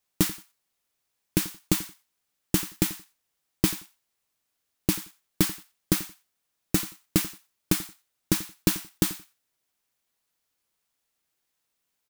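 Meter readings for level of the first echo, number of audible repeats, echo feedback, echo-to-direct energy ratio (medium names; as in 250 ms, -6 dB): -18.0 dB, 2, 18%, -18.0 dB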